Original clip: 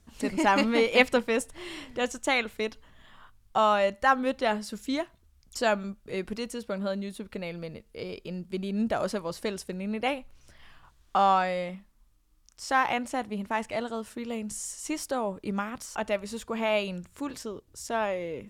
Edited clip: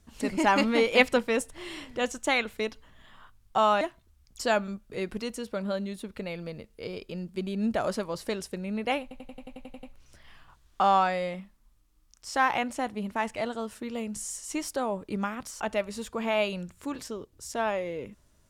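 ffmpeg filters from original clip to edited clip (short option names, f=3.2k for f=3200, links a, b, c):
-filter_complex "[0:a]asplit=11[a][b][c][d][e][f][g][h][i][j][k];[a]atrim=end=3.812[l];[b]atrim=start=4.968:end=10.272[m];[c]atrim=start=10.178:end=10.272[n];[d]atrim=start=10.178:end=10.272[o];[e]atrim=start=10.178:end=10.272[p];[f]atrim=start=10.178:end=10.272[q];[g]atrim=start=10.178:end=10.272[r];[h]atrim=start=10.178:end=10.272[s];[i]atrim=start=10.178:end=10.272[t];[j]atrim=start=10.178:end=10.272[u];[k]atrim=start=10.178[v];[l][m]acrossfade=d=0.004:c1=hsin:c2=hsin[w];[w][n]acrossfade=d=0.004:c1=hsin:c2=hsin[x];[x][o]acrossfade=d=0.004:c1=hsin:c2=hsin[y];[y][p]acrossfade=d=0.004:c1=hsin:c2=hsin[z];[z][q]acrossfade=d=0.004:c1=hsin:c2=hsin[aa];[aa][r]acrossfade=d=0.004:c1=hsin:c2=hsin[ab];[ab][s]acrossfade=d=0.004:c1=hsin:c2=hsin[ac];[ac][t]acrossfade=d=0.004:c1=hsin:c2=hsin[ad];[ad][u]acrossfade=d=0.004:c1=hsin:c2=hsin[ae];[ae][v]acrossfade=d=0.004:c1=hsin:c2=hsin"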